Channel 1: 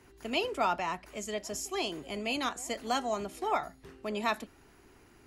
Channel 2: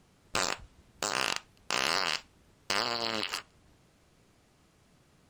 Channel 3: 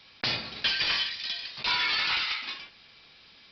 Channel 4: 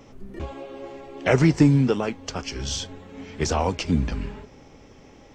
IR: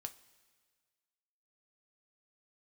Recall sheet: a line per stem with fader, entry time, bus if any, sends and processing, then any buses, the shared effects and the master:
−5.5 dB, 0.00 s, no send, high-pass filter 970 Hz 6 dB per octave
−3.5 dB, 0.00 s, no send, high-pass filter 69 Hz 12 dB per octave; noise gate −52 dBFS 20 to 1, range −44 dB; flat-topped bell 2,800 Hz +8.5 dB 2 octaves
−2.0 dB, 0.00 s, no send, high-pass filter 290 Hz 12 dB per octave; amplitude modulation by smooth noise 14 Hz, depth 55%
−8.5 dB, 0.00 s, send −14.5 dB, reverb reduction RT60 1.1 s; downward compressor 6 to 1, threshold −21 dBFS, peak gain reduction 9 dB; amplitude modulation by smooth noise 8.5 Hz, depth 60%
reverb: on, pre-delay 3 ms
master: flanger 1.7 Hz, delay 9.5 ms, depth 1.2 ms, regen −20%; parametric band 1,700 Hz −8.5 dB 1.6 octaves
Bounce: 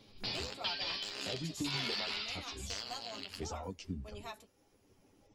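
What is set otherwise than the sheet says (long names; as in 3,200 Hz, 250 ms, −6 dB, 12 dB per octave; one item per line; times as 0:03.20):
stem 2 −3.5 dB → −13.0 dB
stem 3: missing high-pass filter 290 Hz 12 dB per octave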